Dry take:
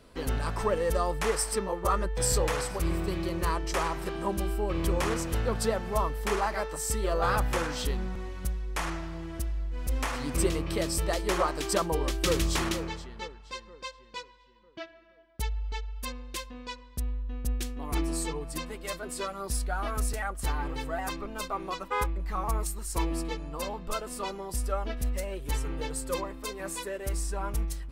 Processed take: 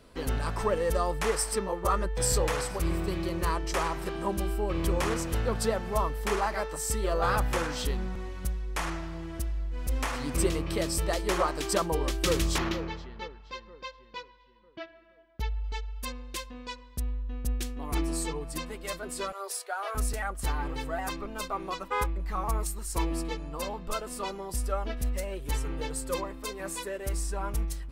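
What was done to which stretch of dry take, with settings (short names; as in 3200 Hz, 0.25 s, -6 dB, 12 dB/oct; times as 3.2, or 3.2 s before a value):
12.58–15.64 running mean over 5 samples
19.32–19.95 steep high-pass 390 Hz 72 dB/oct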